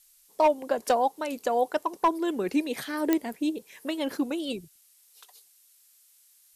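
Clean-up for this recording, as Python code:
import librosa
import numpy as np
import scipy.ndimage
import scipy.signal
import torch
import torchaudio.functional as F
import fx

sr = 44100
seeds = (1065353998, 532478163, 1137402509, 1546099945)

y = fx.fix_declip(x, sr, threshold_db=-15.0)
y = fx.fix_declick_ar(y, sr, threshold=10.0)
y = fx.noise_reduce(y, sr, print_start_s=5.45, print_end_s=5.95, reduce_db=12.0)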